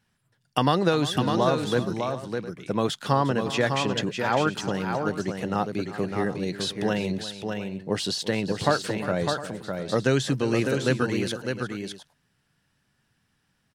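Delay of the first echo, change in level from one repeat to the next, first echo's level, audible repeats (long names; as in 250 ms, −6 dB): 353 ms, repeats not evenly spaced, −15.0 dB, 3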